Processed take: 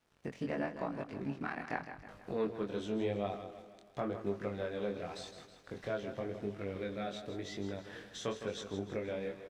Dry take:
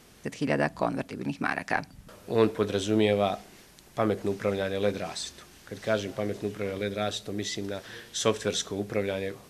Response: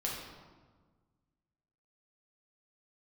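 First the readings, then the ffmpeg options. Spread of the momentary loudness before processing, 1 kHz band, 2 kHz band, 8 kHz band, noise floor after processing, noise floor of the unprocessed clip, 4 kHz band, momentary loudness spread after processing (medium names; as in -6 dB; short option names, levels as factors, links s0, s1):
12 LU, -10.0 dB, -11.5 dB, -17.5 dB, -60 dBFS, -54 dBFS, -14.0 dB, 11 LU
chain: -af "aeval=exprs='sgn(val(0))*max(abs(val(0))-0.00299,0)':c=same,acompressor=threshold=0.00891:ratio=2,aemphasis=mode=reproduction:type=75kf,aecho=1:1:160|320|480|640|800:0.316|0.158|0.0791|0.0395|0.0198,flanger=delay=20:depth=4.6:speed=0.92,volume=1.41"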